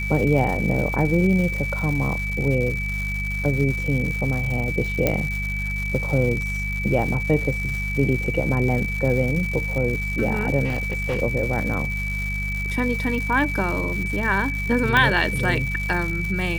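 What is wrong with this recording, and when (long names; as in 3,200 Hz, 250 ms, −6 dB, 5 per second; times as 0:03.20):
surface crackle 280 per second −28 dBFS
mains hum 50 Hz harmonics 4 −28 dBFS
whistle 2,300 Hz −27 dBFS
0:05.07: click −5 dBFS
0:10.64–0:11.20: clipping −19 dBFS
0:14.97: click −6 dBFS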